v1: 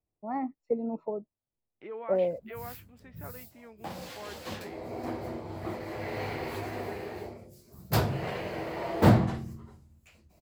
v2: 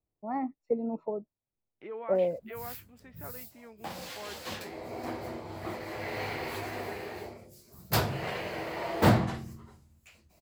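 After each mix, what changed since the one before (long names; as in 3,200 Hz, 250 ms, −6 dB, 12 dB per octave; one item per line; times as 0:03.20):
background: add tilt shelving filter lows −3.5 dB, about 790 Hz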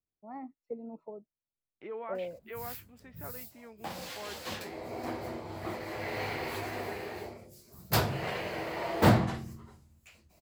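first voice −10.5 dB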